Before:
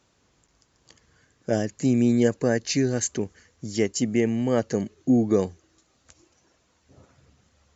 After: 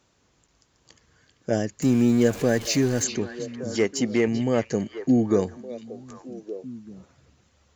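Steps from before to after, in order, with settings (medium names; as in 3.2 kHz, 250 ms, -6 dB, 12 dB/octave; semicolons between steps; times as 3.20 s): 1.82–3.04 s: jump at every zero crossing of -31.5 dBFS; 3.75–4.28 s: overdrive pedal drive 13 dB, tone 2.4 kHz, clips at -9 dBFS; repeats whose band climbs or falls 389 ms, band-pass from 3.2 kHz, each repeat -1.4 oct, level -5.5 dB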